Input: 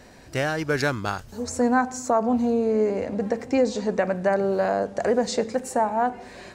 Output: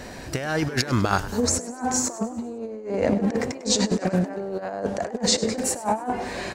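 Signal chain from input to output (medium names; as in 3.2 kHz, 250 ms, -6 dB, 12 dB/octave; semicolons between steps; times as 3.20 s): 3.59–4.19 s: treble shelf 3.3 kHz +9.5 dB; compressor with a negative ratio -29 dBFS, ratio -0.5; frequency-shifting echo 100 ms, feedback 52%, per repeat +95 Hz, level -16.5 dB; trim +4.5 dB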